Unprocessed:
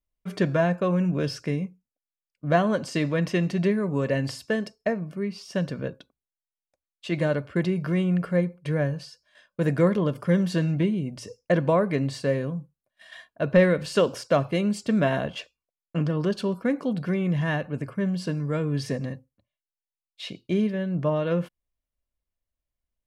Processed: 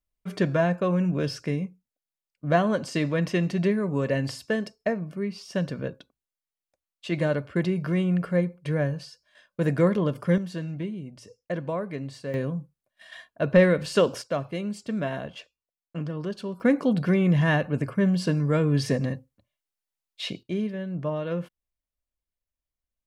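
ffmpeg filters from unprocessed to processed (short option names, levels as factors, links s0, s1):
-af "asetnsamples=n=441:p=0,asendcmd='10.38 volume volume -8.5dB;12.34 volume volume 0.5dB;14.22 volume volume -6.5dB;16.6 volume volume 4dB;20.43 volume volume -4.5dB',volume=0.944"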